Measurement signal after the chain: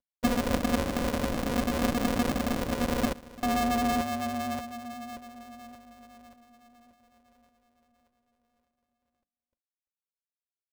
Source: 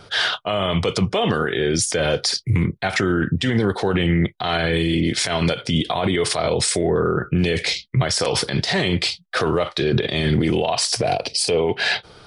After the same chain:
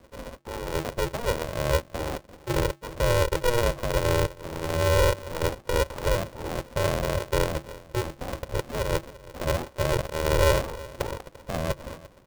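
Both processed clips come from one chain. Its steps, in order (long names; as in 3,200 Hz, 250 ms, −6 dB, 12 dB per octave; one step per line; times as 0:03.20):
variable-slope delta modulation 16 kbit/s
spectral tilt −2.5 dB per octave
mains-hum notches 50/100 Hz
comb filter 3.3 ms, depth 34%
in parallel at −10 dB: centre clipping without the shift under −18.5 dBFS
on the sum: formant resonators in series u
pitch vibrato 7.9 Hz 31 cents
on a send: single-tap delay 344 ms −19.5 dB
on the sum: ring modulator with a square carrier 240 Hz
level −2.5 dB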